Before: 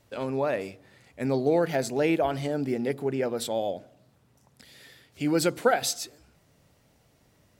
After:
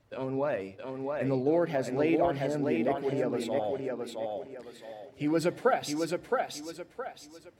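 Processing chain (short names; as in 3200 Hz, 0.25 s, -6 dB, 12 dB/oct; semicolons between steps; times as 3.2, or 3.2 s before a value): bin magnitudes rounded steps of 15 dB; high shelf 4200 Hz -11.5 dB; thinning echo 0.667 s, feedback 35%, high-pass 180 Hz, level -3 dB; gain -2.5 dB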